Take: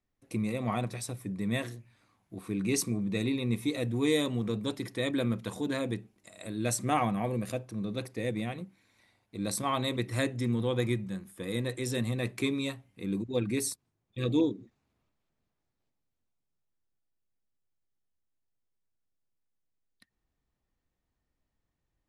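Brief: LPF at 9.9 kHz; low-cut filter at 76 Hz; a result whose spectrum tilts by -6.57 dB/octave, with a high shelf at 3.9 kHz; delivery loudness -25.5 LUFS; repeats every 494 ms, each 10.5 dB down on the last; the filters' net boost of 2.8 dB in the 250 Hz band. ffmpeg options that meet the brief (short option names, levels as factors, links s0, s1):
-af "highpass=76,lowpass=9900,equalizer=f=250:t=o:g=3.5,highshelf=f=3900:g=-9,aecho=1:1:494|988|1482:0.299|0.0896|0.0269,volume=1.88"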